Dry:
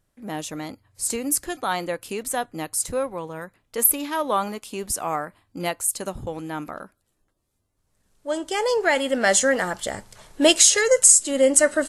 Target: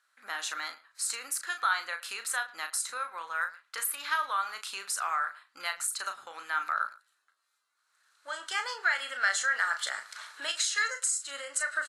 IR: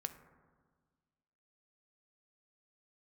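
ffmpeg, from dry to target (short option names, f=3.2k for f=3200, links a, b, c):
-filter_complex "[0:a]lowpass=10k,equalizer=f=4.1k:t=o:w=0.22:g=8.5,acompressor=threshold=-30dB:ratio=5,highpass=f=1.4k:t=q:w=4.4,asplit=2[a][b];[b]adelay=36,volume=-8dB[c];[a][c]amix=inputs=2:normalize=0,asplit=2[d][e];[e]adelay=110,highpass=300,lowpass=3.4k,asoftclip=type=hard:threshold=-24dB,volume=-19dB[f];[d][f]amix=inputs=2:normalize=0"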